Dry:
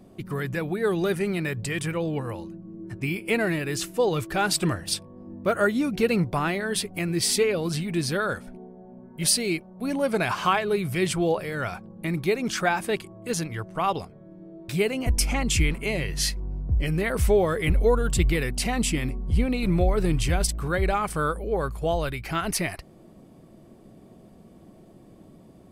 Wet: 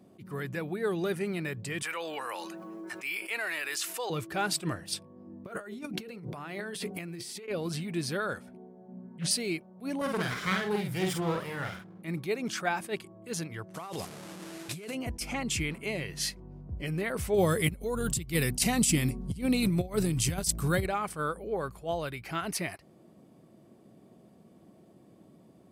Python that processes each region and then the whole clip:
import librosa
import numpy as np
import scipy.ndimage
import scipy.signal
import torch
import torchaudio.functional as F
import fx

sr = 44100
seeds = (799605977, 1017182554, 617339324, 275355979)

y = fx.chain(x, sr, fx.highpass(hz=1000.0, slope=12),
    fx.env_flatten(amount_pct=70), at=(1.82, 4.1))
y = fx.chain(y, sr, fx.hum_notches(base_hz=50, count=10),
    fx.over_compress(threshold_db=-34.0, ratio=-1.0), at=(5.46, 7.48))
y = fx.chain(y, sr, fx.lowpass(hz=8300.0, slope=24),
    fx.peak_eq(hz=190.0, db=10.5, octaves=0.52),
    fx.doppler_dist(depth_ms=0.36), at=(8.88, 9.31))
y = fx.chain(y, sr, fx.lower_of_two(delay_ms=0.56),
    fx.doubler(ms=48.0, db=-3.5), at=(10.01, 12.02))
y = fx.chain(y, sr, fx.delta_mod(bps=64000, step_db=-38.0),
    fx.high_shelf(hz=4800.0, db=8.0),
    fx.over_compress(threshold_db=-32.0, ratio=-1.0), at=(13.74, 14.95))
y = fx.chain(y, sr, fx.bass_treble(bass_db=8, treble_db=14),
    fx.over_compress(threshold_db=-17.0, ratio=-0.5), at=(17.34, 20.86))
y = scipy.signal.sosfilt(scipy.signal.butter(2, 110.0, 'highpass', fs=sr, output='sos'), y)
y = fx.attack_slew(y, sr, db_per_s=250.0)
y = F.gain(torch.from_numpy(y), -6.0).numpy()